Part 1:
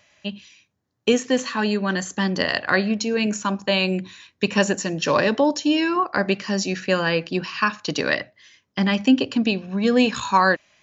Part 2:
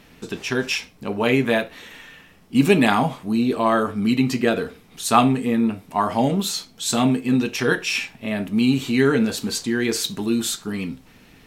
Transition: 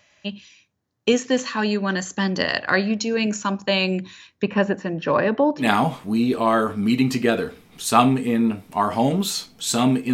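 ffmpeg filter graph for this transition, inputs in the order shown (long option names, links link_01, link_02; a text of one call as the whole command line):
ffmpeg -i cue0.wav -i cue1.wav -filter_complex "[0:a]asettb=1/sr,asplit=3[link_01][link_02][link_03];[link_01]atrim=end=4.424[link_04];[link_02]atrim=start=4.42:end=5.69,asetpts=PTS-STARTPTS,afade=type=in:duration=0.004:curve=qsin,afade=type=out:start_time=1.266:duration=0.004:curve=qsin,lowpass=1900[link_05];[link_03]atrim=start=5.686[link_06];[link_04][link_05]acrossfade=duration=0.004:curve1=hsin:curve2=qsin[link_07];[link_07][link_06]acrossfade=duration=0.004:curve1=qsin:curve2=hsin,apad=whole_dur=10.13,atrim=end=10.13,atrim=end=5.69,asetpts=PTS-STARTPTS[link_08];[1:a]atrim=start=2.76:end=7.32,asetpts=PTS-STARTPTS[link_09];[link_08][link_09]acrossfade=duration=0.12:curve1=tri:curve2=tri" out.wav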